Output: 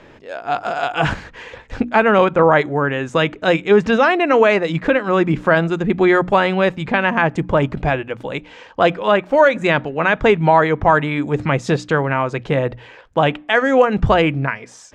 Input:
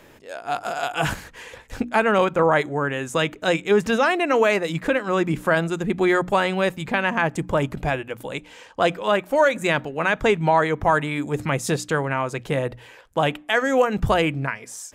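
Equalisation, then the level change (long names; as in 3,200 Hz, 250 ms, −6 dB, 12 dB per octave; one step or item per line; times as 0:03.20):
high-frequency loss of the air 150 metres
+6.0 dB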